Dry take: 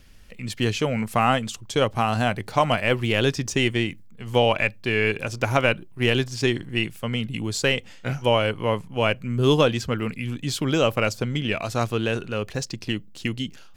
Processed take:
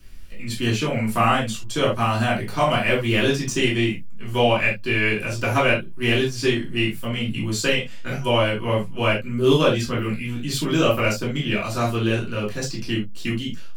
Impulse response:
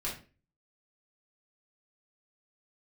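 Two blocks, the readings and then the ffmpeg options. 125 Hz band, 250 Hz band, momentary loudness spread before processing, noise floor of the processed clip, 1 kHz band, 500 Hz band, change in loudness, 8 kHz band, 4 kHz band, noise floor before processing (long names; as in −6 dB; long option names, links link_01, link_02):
+1.5 dB, +2.5 dB, 8 LU, −30 dBFS, +1.0 dB, +1.0 dB, +2.0 dB, +2.0 dB, +1.5 dB, −44 dBFS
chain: -filter_complex "[0:a]highshelf=frequency=8400:gain=8,acrossover=split=110|2700[link_01][link_02][link_03];[link_01]acompressor=threshold=-42dB:ratio=6[link_04];[link_04][link_02][link_03]amix=inputs=3:normalize=0[link_05];[1:a]atrim=start_sample=2205,atrim=end_sample=3969[link_06];[link_05][link_06]afir=irnorm=-1:irlink=0,volume=-1.5dB"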